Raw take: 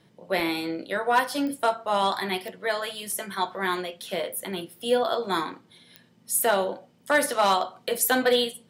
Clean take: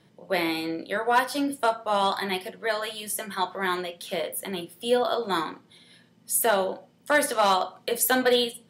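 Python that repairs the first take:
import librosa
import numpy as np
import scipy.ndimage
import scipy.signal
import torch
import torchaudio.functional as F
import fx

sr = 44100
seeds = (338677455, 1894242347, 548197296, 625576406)

y = fx.fix_declick_ar(x, sr, threshold=10.0)
y = fx.fix_interpolate(y, sr, at_s=(0.4, 3.12, 6.39), length_ms=1.8)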